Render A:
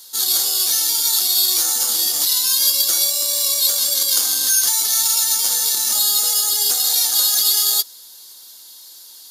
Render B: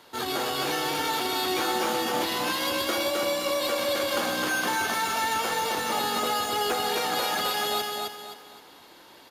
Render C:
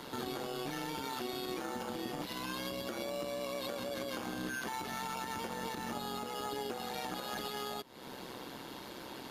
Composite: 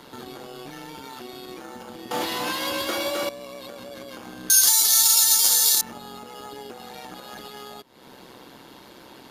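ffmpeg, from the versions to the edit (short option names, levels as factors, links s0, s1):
-filter_complex "[2:a]asplit=3[s0][s1][s2];[s0]atrim=end=2.112[s3];[1:a]atrim=start=2.108:end=3.292[s4];[s1]atrim=start=3.288:end=4.502[s5];[0:a]atrim=start=4.498:end=5.812[s6];[s2]atrim=start=5.808[s7];[s3][s4]acrossfade=d=0.004:c1=hsin:c2=hsin[s8];[s8][s5]acrossfade=d=0.004:c1=hsin:c2=hsin[s9];[s9][s6]acrossfade=d=0.004:c1=hsin:c2=hsin[s10];[s10][s7]acrossfade=d=0.004:c1=hsin:c2=hsin"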